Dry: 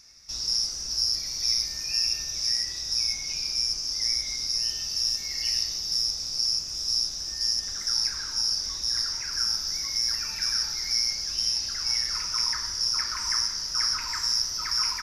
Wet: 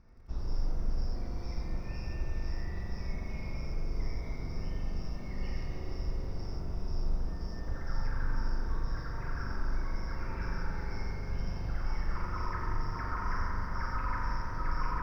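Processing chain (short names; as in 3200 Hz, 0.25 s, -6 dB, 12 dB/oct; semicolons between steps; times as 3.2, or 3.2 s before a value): spring tank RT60 3.6 s, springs 41 ms, chirp 45 ms, DRR -1.5 dB; short-mantissa float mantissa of 4-bit; LPF 1100 Hz 12 dB/oct; tilt -2.5 dB/oct; lo-fi delay 88 ms, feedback 35%, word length 10-bit, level -15 dB; gain +2 dB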